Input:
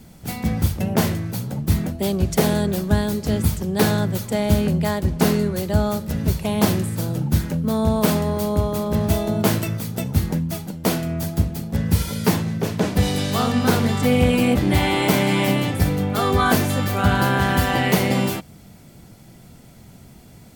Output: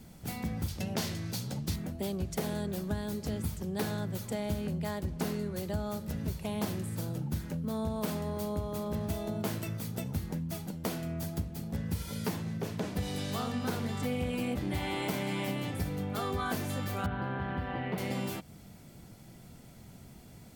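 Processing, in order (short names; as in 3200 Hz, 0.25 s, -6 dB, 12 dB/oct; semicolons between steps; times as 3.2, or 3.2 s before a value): 0.68–1.76 bell 4800 Hz +11 dB 1.8 oct; compressor 2.5:1, threshold -28 dBFS, peak gain reduction 11 dB; 17.06–17.98 air absorption 440 m; gain -6.5 dB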